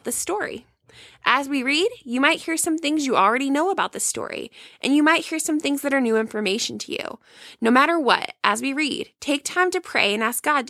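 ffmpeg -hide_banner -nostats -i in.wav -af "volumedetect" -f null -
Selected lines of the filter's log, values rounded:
mean_volume: -22.3 dB
max_volume: -1.2 dB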